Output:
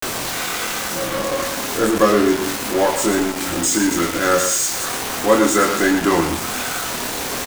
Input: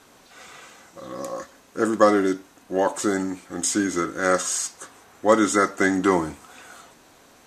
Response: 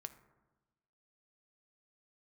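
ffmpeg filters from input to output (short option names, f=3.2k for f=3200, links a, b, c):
-filter_complex "[0:a]aeval=exprs='val(0)+0.5*0.119*sgn(val(0))':c=same,asplit=2[a][b];[b]adelay=24,volume=-4dB[c];[a][c]amix=inputs=2:normalize=0,asplit=2[d][e];[1:a]atrim=start_sample=2205,adelay=111[f];[e][f]afir=irnorm=-1:irlink=0,volume=-3.5dB[g];[d][g]amix=inputs=2:normalize=0,aeval=exprs='val(0)*gte(abs(val(0)),0.0944)':c=same,volume=-1dB"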